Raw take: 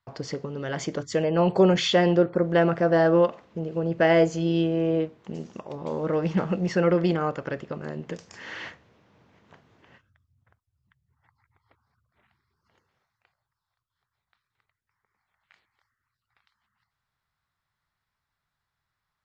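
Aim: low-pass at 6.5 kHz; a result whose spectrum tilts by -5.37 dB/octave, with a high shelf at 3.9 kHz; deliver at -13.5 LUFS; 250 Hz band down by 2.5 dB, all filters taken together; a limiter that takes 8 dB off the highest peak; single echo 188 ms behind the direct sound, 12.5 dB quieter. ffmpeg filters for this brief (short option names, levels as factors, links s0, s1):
-af "lowpass=6500,equalizer=f=250:t=o:g=-4.5,highshelf=f=3900:g=-5.5,alimiter=limit=0.15:level=0:latency=1,aecho=1:1:188:0.237,volume=5.31"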